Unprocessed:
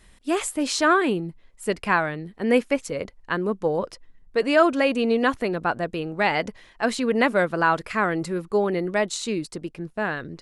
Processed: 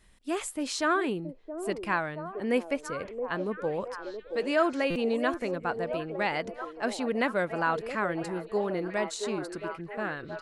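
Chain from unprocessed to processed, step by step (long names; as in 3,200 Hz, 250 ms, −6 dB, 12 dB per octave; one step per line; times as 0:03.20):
echo through a band-pass that steps 673 ms, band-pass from 450 Hz, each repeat 0.7 octaves, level −5.5 dB
buffer that repeats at 0:04.90, samples 256, times 9
level −7.5 dB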